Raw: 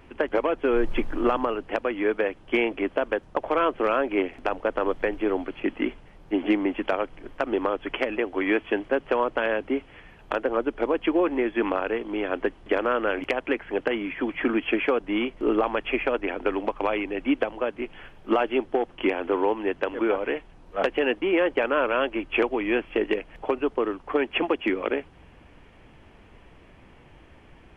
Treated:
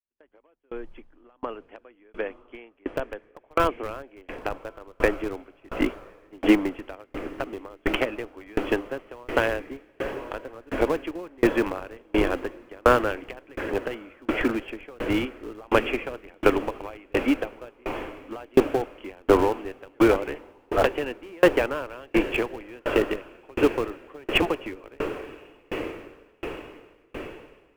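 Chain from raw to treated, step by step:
fade in at the beginning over 6.31 s
noise gate with hold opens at −46 dBFS
in parallel at −5 dB: comparator with hysteresis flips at −20 dBFS
on the sum: feedback delay with all-pass diffusion 1,190 ms, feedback 60%, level −11.5 dB
tremolo with a ramp in dB decaying 1.4 Hz, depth 35 dB
level +8 dB

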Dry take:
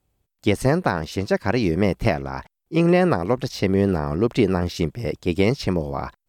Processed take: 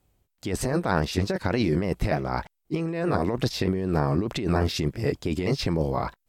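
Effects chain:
pitch shifter swept by a sawtooth −1.5 semitones, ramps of 304 ms
compressor whose output falls as the input rises −24 dBFS, ratio −1

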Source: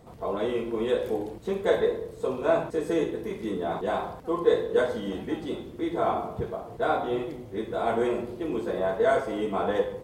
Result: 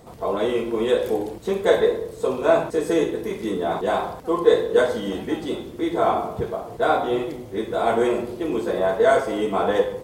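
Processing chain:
bass and treble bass −3 dB, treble +4 dB
level +6 dB

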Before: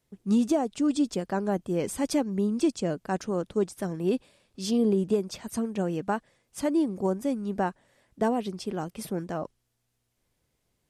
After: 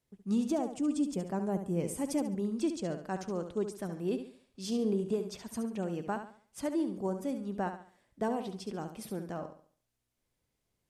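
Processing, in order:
0:00.59–0:02.35: graphic EQ with 15 bands 160 Hz +6 dB, 1,600 Hz −5 dB, 4,000 Hz −7 dB, 10,000 Hz +4 dB
on a send: flutter between parallel walls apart 12 metres, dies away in 0.47 s
on the sum: level −7 dB

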